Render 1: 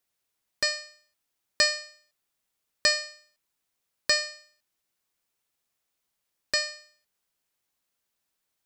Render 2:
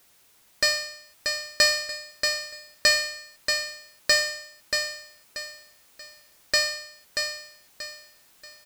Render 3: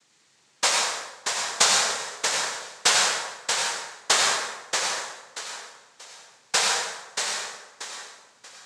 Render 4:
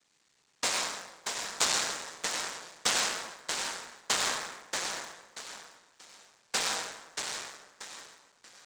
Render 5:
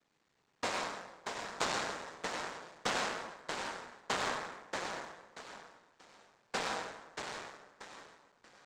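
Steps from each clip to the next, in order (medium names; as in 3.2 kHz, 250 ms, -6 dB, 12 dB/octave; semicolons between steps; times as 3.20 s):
power-law waveshaper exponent 0.7; feedback delay 633 ms, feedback 33%, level -5.5 dB
noise-vocoded speech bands 6; plate-style reverb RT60 1 s, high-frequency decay 0.6×, pre-delay 75 ms, DRR 0 dB
cycle switcher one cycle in 3, muted; trim -6.5 dB
low-pass 1.1 kHz 6 dB/octave; trim +1.5 dB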